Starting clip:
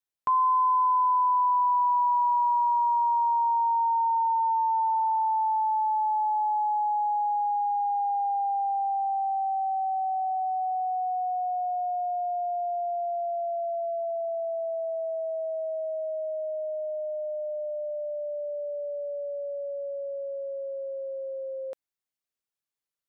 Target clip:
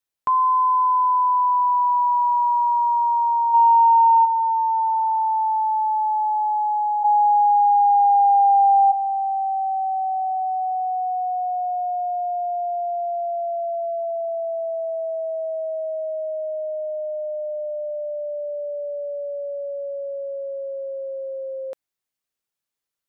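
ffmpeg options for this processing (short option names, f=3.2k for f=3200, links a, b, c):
-filter_complex "[0:a]asplit=3[a][b][c];[a]afade=t=out:st=3.53:d=0.02[d];[b]acontrast=59,afade=t=in:st=3.53:d=0.02,afade=t=out:st=4.24:d=0.02[e];[c]afade=t=in:st=4.24:d=0.02[f];[d][e][f]amix=inputs=3:normalize=0,asplit=3[g][h][i];[g]afade=t=out:st=7.03:d=0.02[j];[h]lowpass=f=680:t=q:w=7.6,afade=t=in:st=7.03:d=0.02,afade=t=out:st=8.91:d=0.02[k];[i]afade=t=in:st=8.91:d=0.02[l];[j][k][l]amix=inputs=3:normalize=0,volume=4.5dB"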